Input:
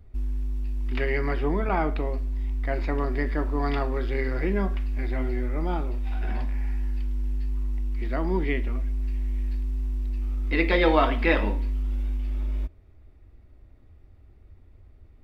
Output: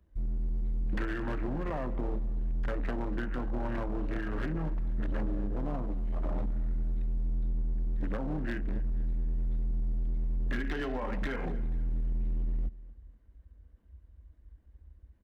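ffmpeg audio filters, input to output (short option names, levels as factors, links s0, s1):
-filter_complex "[0:a]highpass=f=110:p=1,afwtdn=0.0141,asplit=2[s0][s1];[s1]acompressor=threshold=0.0112:ratio=10,volume=1[s2];[s0][s2]amix=inputs=2:normalize=0,alimiter=limit=0.126:level=0:latency=1:release=198,acrossover=split=150[s3][s4];[s4]acompressor=threshold=0.0178:ratio=4[s5];[s3][s5]amix=inputs=2:normalize=0,asetrate=36028,aresample=44100,atempo=1.22405,volume=31.6,asoftclip=hard,volume=0.0316,aecho=1:1:242|484|726:0.119|0.044|0.0163,volume=1.26"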